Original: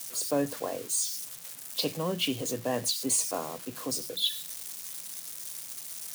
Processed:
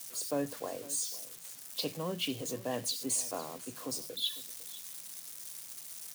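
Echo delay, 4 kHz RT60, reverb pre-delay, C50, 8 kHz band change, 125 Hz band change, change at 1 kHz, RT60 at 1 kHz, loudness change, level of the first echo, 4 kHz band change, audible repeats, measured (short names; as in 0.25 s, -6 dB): 0.503 s, none, none, none, -5.5 dB, -5.5 dB, -5.5 dB, none, -5.5 dB, -18.5 dB, -5.5 dB, 1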